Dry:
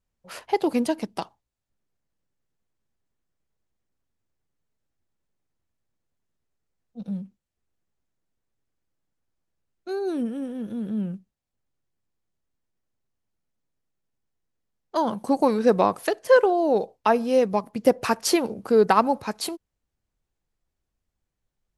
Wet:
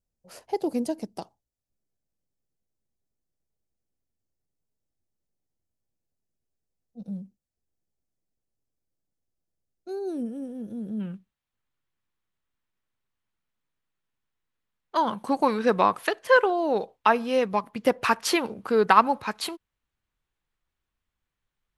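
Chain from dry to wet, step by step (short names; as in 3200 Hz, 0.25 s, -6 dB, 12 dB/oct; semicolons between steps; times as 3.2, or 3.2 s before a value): band shelf 1900 Hz -8.5 dB 2.3 oct, from 10.99 s +8 dB; gain -4 dB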